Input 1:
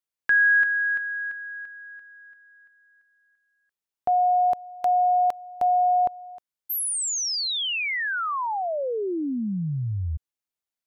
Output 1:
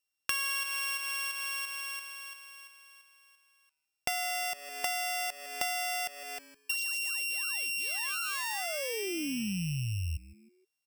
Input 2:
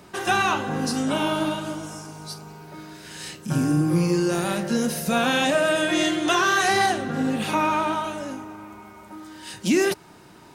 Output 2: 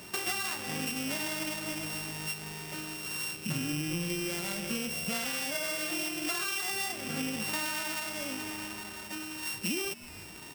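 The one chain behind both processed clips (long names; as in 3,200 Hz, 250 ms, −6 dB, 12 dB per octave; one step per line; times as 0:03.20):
samples sorted by size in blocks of 16 samples
high-shelf EQ 2,100 Hz +9 dB
on a send: echo with shifted repeats 157 ms, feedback 38%, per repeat −150 Hz, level −22 dB
on the sum: downward compressor 6 to 1, threshold −29 dBFS
level −2 dB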